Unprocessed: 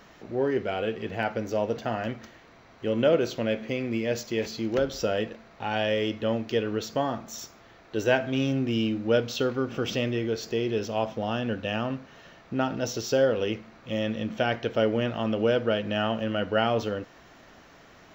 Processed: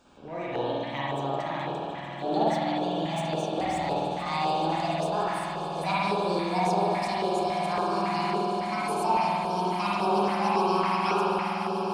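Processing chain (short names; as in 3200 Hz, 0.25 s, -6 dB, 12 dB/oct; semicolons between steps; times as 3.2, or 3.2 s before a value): speed glide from 124% -> 180%; on a send: swelling echo 0.145 s, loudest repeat 8, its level -15 dB; on the sum: spring tank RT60 2.2 s, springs 50 ms, chirp 25 ms, DRR -7.5 dB; LFO notch square 1.8 Hz 440–2000 Hz; gain -8 dB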